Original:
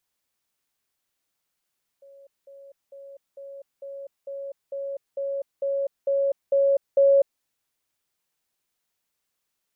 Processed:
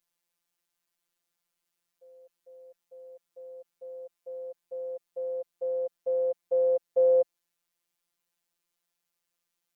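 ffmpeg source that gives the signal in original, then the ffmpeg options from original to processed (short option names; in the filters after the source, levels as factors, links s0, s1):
-f lavfi -i "aevalsrc='pow(10,(-46.5+3*floor(t/0.45))/20)*sin(2*PI*554*t)*clip(min(mod(t,0.45),0.25-mod(t,0.45))/0.005,0,1)':d=5.4:s=44100"
-af "afftfilt=real='hypot(re,im)*cos(PI*b)':imag='0':win_size=1024:overlap=0.75"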